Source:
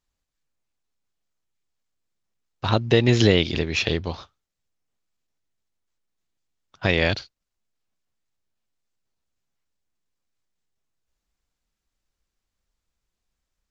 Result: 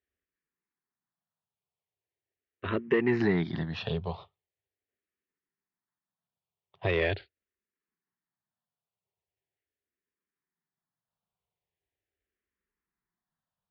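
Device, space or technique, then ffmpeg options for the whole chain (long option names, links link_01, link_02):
barber-pole phaser into a guitar amplifier: -filter_complex "[0:a]asplit=2[link_01][link_02];[link_02]afreqshift=-0.41[link_03];[link_01][link_03]amix=inputs=2:normalize=1,asoftclip=type=tanh:threshold=-15dB,highpass=77,equalizer=frequency=95:width_type=q:width=4:gain=4,equalizer=frequency=170:width_type=q:width=4:gain=6,equalizer=frequency=400:width_type=q:width=4:gain=9,equalizer=frequency=710:width_type=q:width=4:gain=4,equalizer=frequency=1000:width_type=q:width=4:gain=4,equalizer=frequency=1800:width_type=q:width=4:gain=7,lowpass=frequency=3400:width=0.5412,lowpass=frequency=3400:width=1.3066,volume=-6dB"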